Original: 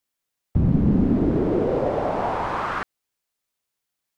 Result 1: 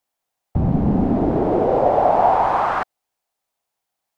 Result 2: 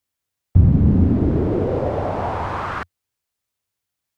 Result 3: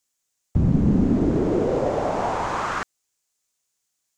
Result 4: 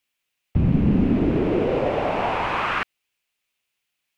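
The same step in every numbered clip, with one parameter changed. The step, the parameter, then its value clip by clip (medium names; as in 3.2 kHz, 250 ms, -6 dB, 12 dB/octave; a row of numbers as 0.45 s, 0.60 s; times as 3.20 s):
peaking EQ, frequency: 760 Hz, 88 Hz, 6.9 kHz, 2.6 kHz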